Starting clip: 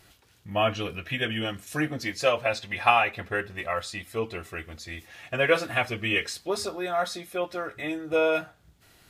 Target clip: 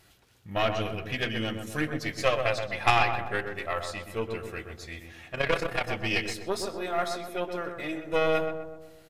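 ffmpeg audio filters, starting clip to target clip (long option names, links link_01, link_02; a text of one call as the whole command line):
ffmpeg -i in.wav -filter_complex "[0:a]aeval=exprs='0.531*(cos(1*acos(clip(val(0)/0.531,-1,1)))-cos(1*PI/2))+0.119*(cos(2*acos(clip(val(0)/0.531,-1,1)))-cos(2*PI/2))+0.0531*(cos(6*acos(clip(val(0)/0.531,-1,1)))-cos(6*PI/2))':channel_layout=same,asplit=2[link_01][link_02];[link_02]adelay=126,lowpass=frequency=1300:poles=1,volume=-5dB,asplit=2[link_03][link_04];[link_04]adelay=126,lowpass=frequency=1300:poles=1,volume=0.55,asplit=2[link_05][link_06];[link_06]adelay=126,lowpass=frequency=1300:poles=1,volume=0.55,asplit=2[link_07][link_08];[link_08]adelay=126,lowpass=frequency=1300:poles=1,volume=0.55,asplit=2[link_09][link_10];[link_10]adelay=126,lowpass=frequency=1300:poles=1,volume=0.55,asplit=2[link_11][link_12];[link_12]adelay=126,lowpass=frequency=1300:poles=1,volume=0.55,asplit=2[link_13][link_14];[link_14]adelay=126,lowpass=frequency=1300:poles=1,volume=0.55[link_15];[link_01][link_03][link_05][link_07][link_09][link_11][link_13][link_15]amix=inputs=8:normalize=0,asplit=3[link_16][link_17][link_18];[link_16]afade=type=out:start_time=5.31:duration=0.02[link_19];[link_17]tremolo=f=32:d=0.667,afade=type=in:start_time=5.31:duration=0.02,afade=type=out:start_time=5.86:duration=0.02[link_20];[link_18]afade=type=in:start_time=5.86:duration=0.02[link_21];[link_19][link_20][link_21]amix=inputs=3:normalize=0,volume=-3dB" out.wav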